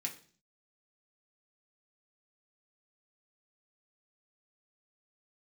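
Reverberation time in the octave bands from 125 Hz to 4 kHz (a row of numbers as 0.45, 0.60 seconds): 0.70, 0.65, 0.50, 0.40, 0.40, 0.50 seconds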